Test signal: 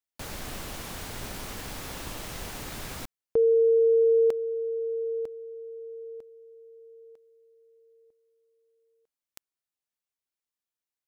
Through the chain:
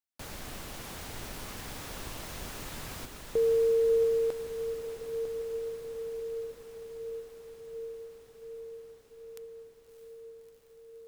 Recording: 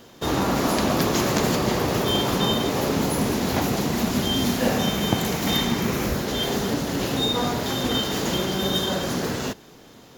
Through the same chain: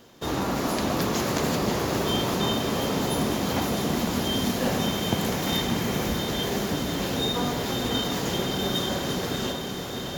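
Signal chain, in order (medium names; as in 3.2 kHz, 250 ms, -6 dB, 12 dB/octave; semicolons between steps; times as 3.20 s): echo that smears into a reverb 640 ms, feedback 77%, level -7 dB; trim -4.5 dB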